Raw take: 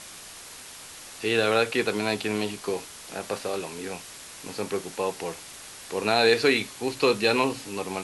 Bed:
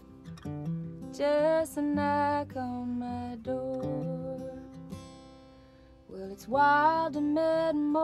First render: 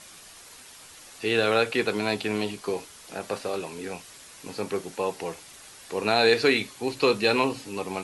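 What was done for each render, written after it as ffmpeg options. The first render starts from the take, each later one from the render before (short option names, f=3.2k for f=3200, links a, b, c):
-af "afftdn=nr=6:nf=-44"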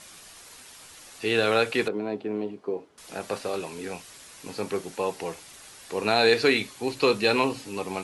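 -filter_complex "[0:a]asettb=1/sr,asplit=3[a][b][c];[a]atrim=end=1.884[d];[b]atrim=start=1.88:end=2.98,asetpts=PTS-STARTPTS,afade=t=in:d=0.004:c=qsin,afade=t=out:st=1.096:d=0.004:c=qsin,bandpass=f=350:t=q:w=1[e];[c]atrim=start=2.976[f];[d][e]acrossfade=d=0.004:c1=hsin:c2=qsin[g];[g][f]acrossfade=d=0.004:c1=qsin:c2=hsin"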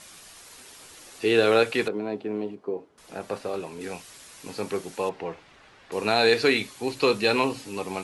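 -filter_complex "[0:a]asettb=1/sr,asplit=3[a][b][c];[a]atrim=end=0.574[d];[b]atrim=start=0.57:end=1.63,asetpts=PTS-STARTPTS,afade=t=in:d=0.004:c=qsin,afade=t=out:st=1.056:d=0.004:c=qsin,equalizer=f=380:w=1.5:g=6[e];[c]atrim=start=1.626[f];[d][e]acrossfade=d=0.004:c1=hsin:c2=qsin[g];[g][f]acrossfade=d=0.004:c1=qsin:c2=hsin,asettb=1/sr,asplit=3[h][i][j];[h]atrim=end=2.554[k];[i]atrim=start=2.55:end=3.81,asetpts=PTS-STARTPTS,afade=t=in:d=0.004:c=qsin,afade=t=out:st=1.256:d=0.004:c=qsin,highshelf=f=2.1k:g=-7.5[l];[j]atrim=start=3.806[m];[k][l]acrossfade=d=0.004:c1=hsin:c2=qsin[n];[n][m]acrossfade=d=0.004:c1=qsin:c2=hsin,asettb=1/sr,asplit=3[o][p][q];[o]atrim=end=5.094[r];[p]atrim=start=5.09:end=5.92,asetpts=PTS-STARTPTS,afade=t=in:d=0.004:c=qsin,afade=t=out:st=0.826:d=0.004:c=qsin,lowpass=2.5k[s];[q]atrim=start=5.916[t];[r][s]acrossfade=d=0.004:c1=hsin:c2=qsin[u];[u][t]acrossfade=d=0.004:c1=qsin:c2=hsin"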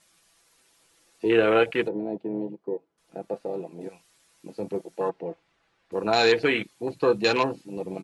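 -af "afwtdn=0.0447,aecho=1:1:6:0.39"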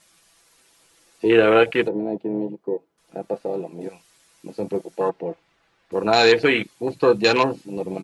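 -af "volume=5dB"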